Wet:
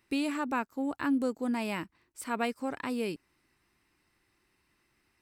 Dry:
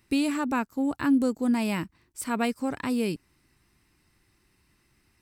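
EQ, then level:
bass and treble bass −9 dB, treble −5 dB
−2.5 dB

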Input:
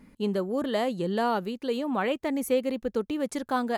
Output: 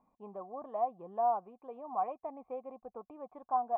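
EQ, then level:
formant resonators in series a
+3.5 dB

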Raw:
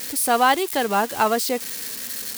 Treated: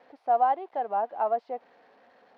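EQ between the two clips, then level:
resonant band-pass 710 Hz, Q 4.3
high-frequency loss of the air 310 metres
0.0 dB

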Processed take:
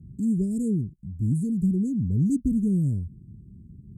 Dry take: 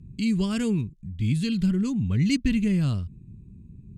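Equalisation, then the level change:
high-pass filter 45 Hz
inverse Chebyshev band-stop filter 920–4,100 Hz, stop band 50 dB
0.0 dB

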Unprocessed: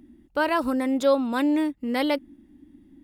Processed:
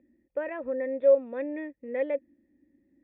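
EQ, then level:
formant resonators in series e
high-pass filter 41 Hz
notch filter 2,900 Hz, Q 25
+3.0 dB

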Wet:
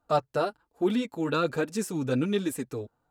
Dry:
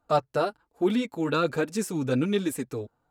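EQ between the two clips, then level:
notch filter 2,200 Hz, Q 20
−1.5 dB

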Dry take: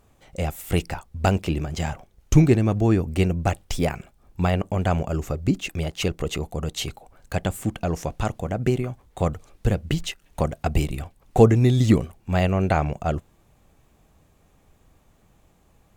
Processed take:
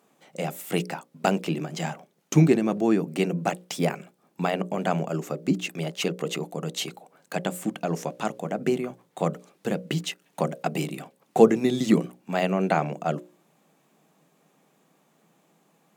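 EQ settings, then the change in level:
elliptic high-pass filter 160 Hz, stop band 50 dB
mains-hum notches 60/120/180/240/300/360/420/480/540/600 Hz
0.0 dB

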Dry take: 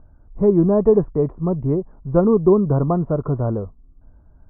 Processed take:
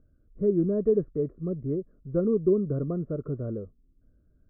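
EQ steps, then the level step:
Butterworth band-reject 870 Hz, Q 0.94
low-pass filter 1,300 Hz 12 dB per octave
low-shelf EQ 150 Hz −9 dB
−6.5 dB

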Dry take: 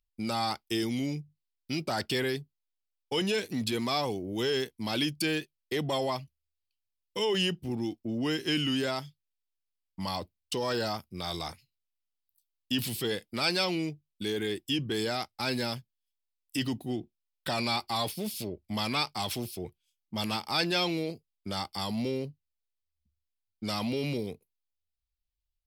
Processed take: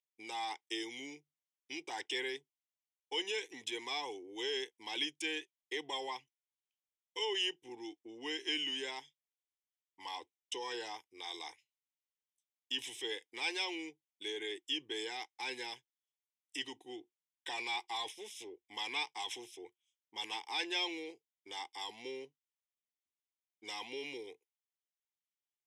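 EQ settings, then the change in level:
loudspeaker in its box 220–5,600 Hz, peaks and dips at 230 Hz −8 dB, 630 Hz −4 dB, 1,200 Hz −9 dB, 1,700 Hz −4 dB, 2,600 Hz −9 dB, 4,600 Hz −6 dB
spectral tilt +4.5 dB per octave
phaser with its sweep stopped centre 910 Hz, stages 8
−2.5 dB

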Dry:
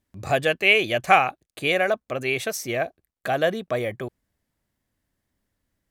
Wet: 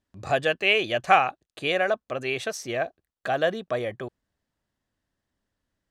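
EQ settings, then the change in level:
high-frequency loss of the air 61 metres
low-shelf EQ 410 Hz −5 dB
parametric band 2,200 Hz −6.5 dB 0.25 octaves
0.0 dB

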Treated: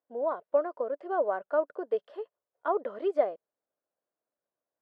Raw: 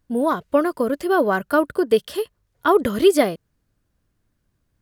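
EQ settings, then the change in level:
four-pole ladder band-pass 700 Hz, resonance 45%
0.0 dB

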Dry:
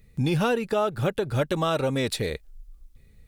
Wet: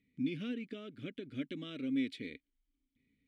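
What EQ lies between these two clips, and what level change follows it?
formant filter i
−1.5 dB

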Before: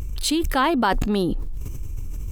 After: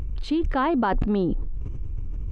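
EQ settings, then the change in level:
head-to-tape spacing loss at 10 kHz 36 dB
0.0 dB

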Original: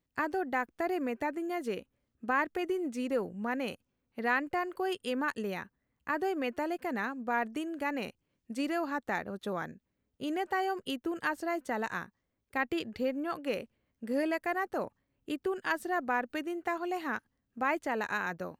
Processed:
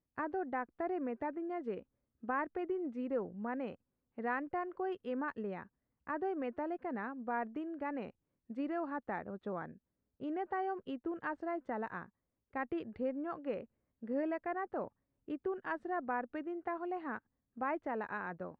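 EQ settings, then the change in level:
low-pass filter 1,400 Hz 12 dB per octave
−4.5 dB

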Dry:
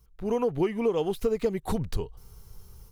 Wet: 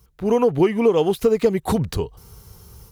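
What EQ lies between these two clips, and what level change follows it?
high-pass filter 64 Hz 12 dB per octave
+9.0 dB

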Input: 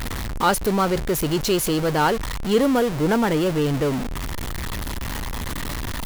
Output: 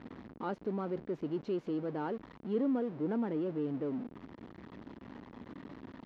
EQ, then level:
resonant band-pass 260 Hz, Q 1.6
high-frequency loss of the air 200 metres
spectral tilt +3 dB per octave
−4.5 dB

